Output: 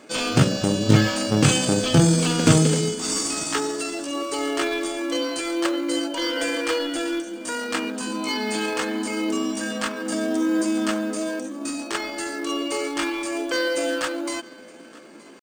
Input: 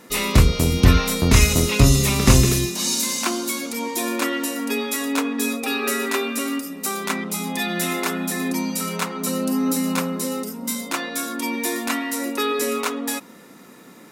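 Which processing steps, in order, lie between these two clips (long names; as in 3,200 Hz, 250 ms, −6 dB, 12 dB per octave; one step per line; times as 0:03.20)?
on a send: feedback echo with a high-pass in the loop 839 ms, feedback 16%, high-pass 160 Hz, level −23 dB
on the sum: speed change +22%
hum removal 175.6 Hz, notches 6
brick-wall band-pass 100–9,400 Hz
tempo change 0.75×
in parallel at −12 dB: decimation without filtering 13×
on the sum: level −2 dB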